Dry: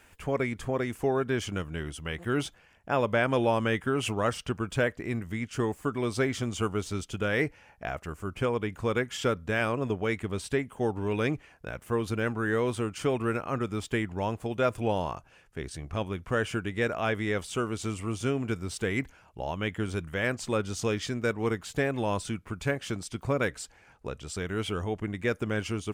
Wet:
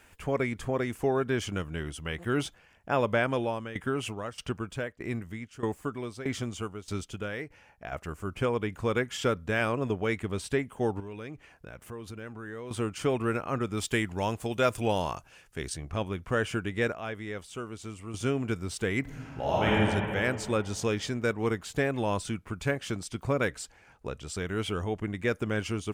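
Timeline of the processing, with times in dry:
3.13–7.92 tremolo saw down 1.6 Hz, depth 85%
11–12.71 compressor 2.5:1, threshold -43 dBFS
13.77–15.74 high shelf 2900 Hz +9.5 dB
16.92–18.14 gain -8 dB
19.01–19.67 reverb throw, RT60 2.6 s, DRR -8.5 dB

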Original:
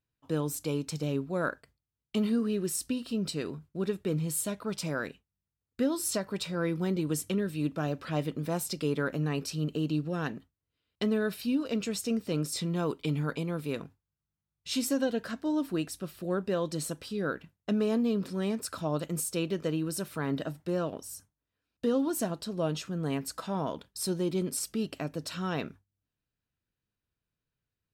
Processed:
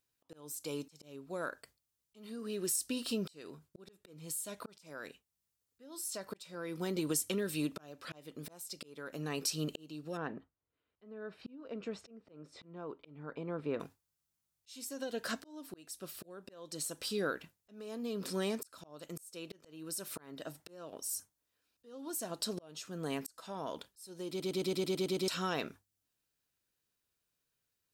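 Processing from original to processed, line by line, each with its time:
10.17–13.8 LPF 1500 Hz
24.29 stutter in place 0.11 s, 9 plays
whole clip: tone controls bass -10 dB, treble +8 dB; compressor 16:1, threshold -32 dBFS; auto swell 0.677 s; gain +2.5 dB

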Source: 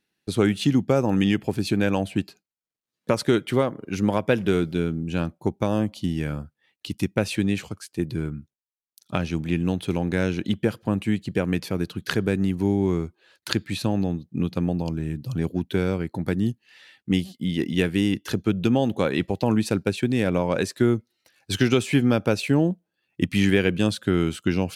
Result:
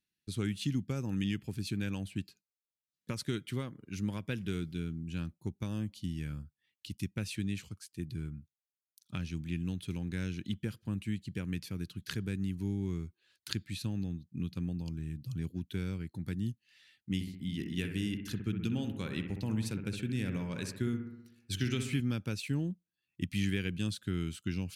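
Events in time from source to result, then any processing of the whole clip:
17.14–22 analogue delay 63 ms, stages 1024, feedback 61%, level -7 dB
whole clip: passive tone stack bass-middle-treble 6-0-2; gain +5.5 dB

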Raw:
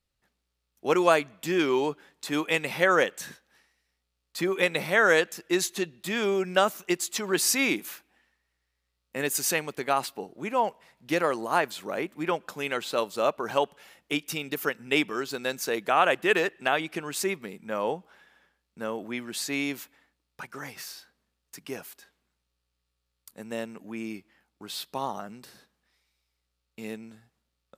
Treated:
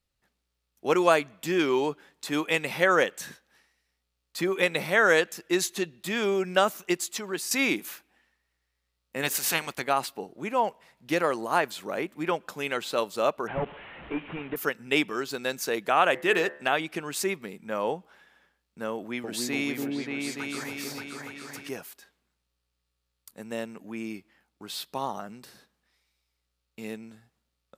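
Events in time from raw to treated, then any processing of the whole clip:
6.94–7.51 fade out, to -11.5 dB
9.22–9.81 spectral limiter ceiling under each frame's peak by 17 dB
13.47–14.56 delta modulation 16 kbps, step -38.5 dBFS
16.11–16.71 de-hum 72.69 Hz, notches 31
18.95–21.69 repeats that get brighter 0.29 s, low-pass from 750 Hz, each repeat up 2 oct, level 0 dB

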